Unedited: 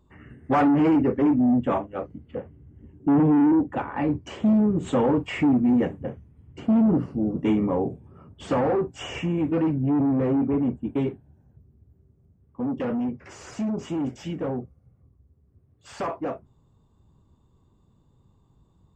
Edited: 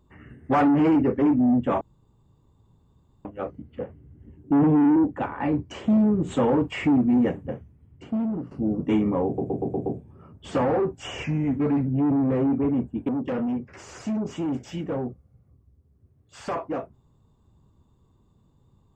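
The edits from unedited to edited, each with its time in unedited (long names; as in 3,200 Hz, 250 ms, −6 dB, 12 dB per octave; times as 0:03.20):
0:01.81: splice in room tone 1.44 s
0:06.07–0:07.07: fade out, to −13 dB
0:07.82: stutter 0.12 s, 6 plays
0:09.20–0:09.75: play speed 89%
0:10.98–0:12.61: remove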